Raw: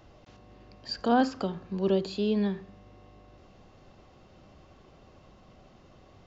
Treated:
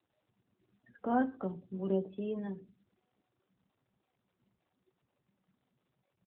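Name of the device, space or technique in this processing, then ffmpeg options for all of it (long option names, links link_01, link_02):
mobile call with aggressive noise cancelling: -filter_complex "[0:a]acrossover=split=2700[link_01][link_02];[link_02]acompressor=threshold=-52dB:ratio=4:attack=1:release=60[link_03];[link_01][link_03]amix=inputs=2:normalize=0,highpass=100,asplit=2[link_04][link_05];[link_05]adelay=16,volume=-6.5dB[link_06];[link_04][link_06]amix=inputs=2:normalize=0,afftdn=noise_reduction=30:noise_floor=-40,volume=-7dB" -ar 8000 -c:a libopencore_amrnb -b:a 12200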